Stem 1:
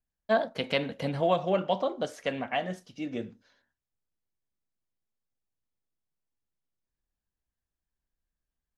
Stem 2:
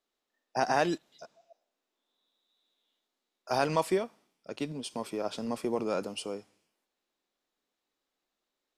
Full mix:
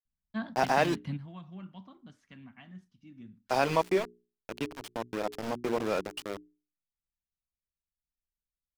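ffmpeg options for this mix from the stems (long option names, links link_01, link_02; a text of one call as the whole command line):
ffmpeg -i stem1.wav -i stem2.wav -filter_complex "[0:a]firequalizer=gain_entry='entry(220,0);entry(500,-28);entry(1000,-10)':delay=0.05:min_phase=1,adelay=50,volume=0.5dB[link_01];[1:a]adynamicequalizer=threshold=0.00316:dfrequency=2400:dqfactor=3:tfrequency=2400:tqfactor=3:attack=5:release=100:ratio=0.375:range=2:mode=boostabove:tftype=bell,aeval=exprs='val(0)*gte(abs(val(0)),0.0224)':channel_layout=same,bandreject=frequency=60:width_type=h:width=6,bandreject=frequency=120:width_type=h:width=6,bandreject=frequency=180:width_type=h:width=6,bandreject=frequency=240:width_type=h:width=6,bandreject=frequency=300:width_type=h:width=6,bandreject=frequency=360:width_type=h:width=6,bandreject=frequency=420:width_type=h:width=6,volume=1.5dB,asplit=2[link_02][link_03];[link_03]apad=whole_len=393567[link_04];[link_01][link_04]sidechaingate=range=-10dB:threshold=-56dB:ratio=16:detection=peak[link_05];[link_05][link_02]amix=inputs=2:normalize=0,highshelf=frequency=6700:gain=-9.5" out.wav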